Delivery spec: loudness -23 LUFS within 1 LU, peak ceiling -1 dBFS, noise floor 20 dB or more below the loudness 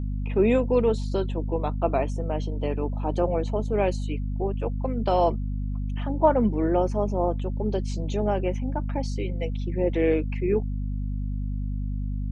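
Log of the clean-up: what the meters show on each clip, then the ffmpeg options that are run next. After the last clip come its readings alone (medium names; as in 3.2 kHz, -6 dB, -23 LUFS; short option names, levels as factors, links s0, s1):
hum 50 Hz; highest harmonic 250 Hz; hum level -26 dBFS; loudness -26.5 LUFS; peak level -8.5 dBFS; loudness target -23.0 LUFS
-> -af "bandreject=f=50:t=h:w=6,bandreject=f=100:t=h:w=6,bandreject=f=150:t=h:w=6,bandreject=f=200:t=h:w=6,bandreject=f=250:t=h:w=6"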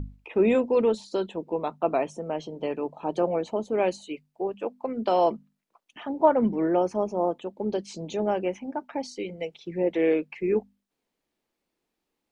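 hum not found; loudness -27.0 LUFS; peak level -9.0 dBFS; loudness target -23.0 LUFS
-> -af "volume=1.58"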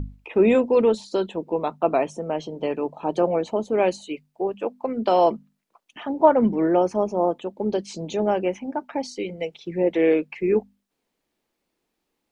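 loudness -23.0 LUFS; peak level -5.0 dBFS; noise floor -79 dBFS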